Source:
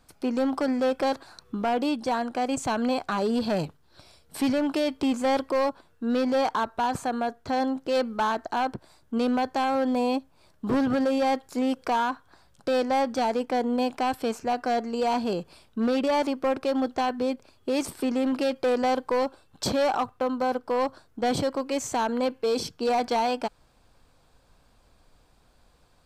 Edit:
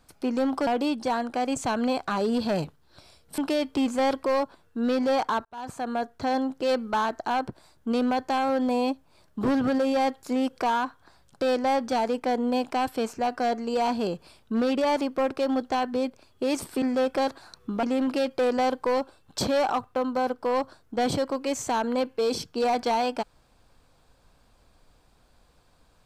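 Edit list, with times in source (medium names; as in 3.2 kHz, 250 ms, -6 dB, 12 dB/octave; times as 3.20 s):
0.67–1.68 s: move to 18.08 s
4.39–4.64 s: delete
6.71–7.26 s: fade in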